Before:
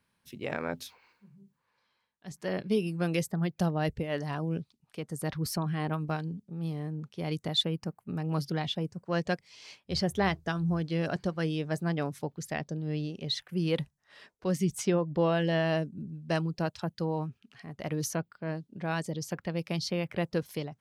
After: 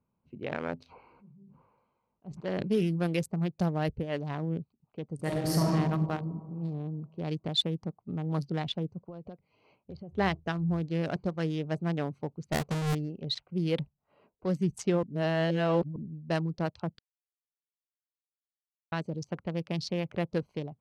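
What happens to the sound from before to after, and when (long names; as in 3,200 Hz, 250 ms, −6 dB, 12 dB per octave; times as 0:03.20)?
0:00.84–0:03.07: level that may fall only so fast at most 31 dB per second
0:05.15–0:05.68: thrown reverb, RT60 2.2 s, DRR −5.5 dB
0:09.05–0:10.13: downward compressor 16 to 1, threshold −38 dBFS
0:12.52–0:12.95: each half-wave held at its own peak
0:15.03–0:15.96: reverse
0:16.99–0:18.92: silence
whole clip: adaptive Wiener filter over 25 samples; low-pass that shuts in the quiet parts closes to 2,500 Hz, open at −25.5 dBFS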